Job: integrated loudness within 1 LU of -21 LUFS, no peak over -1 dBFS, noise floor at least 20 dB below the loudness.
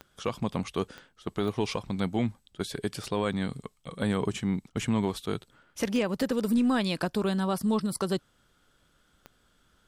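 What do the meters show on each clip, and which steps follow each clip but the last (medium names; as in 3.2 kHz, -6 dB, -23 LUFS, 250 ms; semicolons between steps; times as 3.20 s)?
clicks found 6; loudness -30.0 LUFS; peak level -17.5 dBFS; loudness target -21.0 LUFS
-> de-click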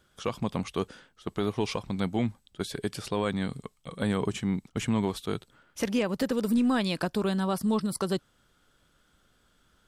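clicks found 0; loudness -30.0 LUFS; peak level -17.5 dBFS; loudness target -21.0 LUFS
-> trim +9 dB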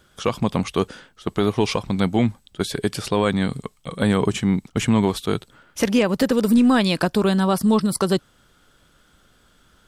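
loudness -21.0 LUFS; peak level -8.5 dBFS; noise floor -58 dBFS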